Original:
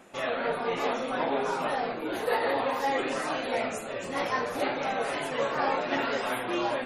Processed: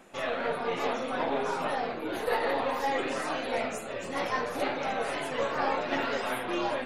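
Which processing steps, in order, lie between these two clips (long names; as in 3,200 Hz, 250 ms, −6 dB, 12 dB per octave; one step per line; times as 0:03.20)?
gain on one half-wave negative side −3 dB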